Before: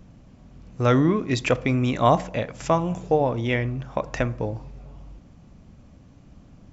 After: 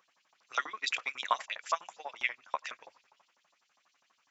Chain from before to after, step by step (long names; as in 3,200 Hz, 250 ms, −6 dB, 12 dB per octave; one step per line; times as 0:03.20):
harmonic and percussive parts rebalanced harmonic −8 dB
auto-filter high-pass saw up 7.8 Hz 910–5,400 Hz
time stretch by overlap-add 0.64×, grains 60 ms
level −3.5 dB